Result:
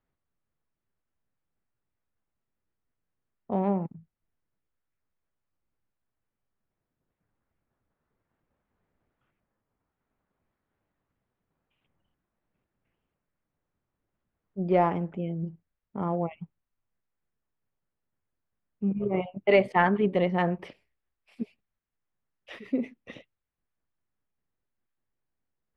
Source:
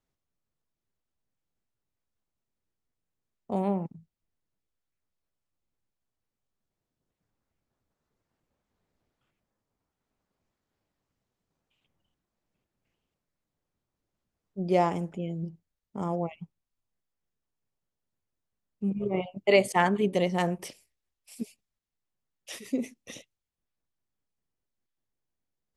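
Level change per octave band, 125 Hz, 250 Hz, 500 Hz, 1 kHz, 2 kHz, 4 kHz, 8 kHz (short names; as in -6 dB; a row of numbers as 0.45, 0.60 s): +1.5 dB, +1.5 dB, +1.0 dB, +1.5 dB, +1.0 dB, -5.0 dB, under -25 dB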